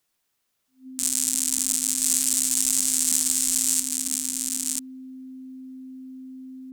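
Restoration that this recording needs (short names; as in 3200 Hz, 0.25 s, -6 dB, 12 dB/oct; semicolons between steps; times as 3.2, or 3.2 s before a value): clip repair -4 dBFS; notch 260 Hz, Q 30; inverse comb 0.987 s -3.5 dB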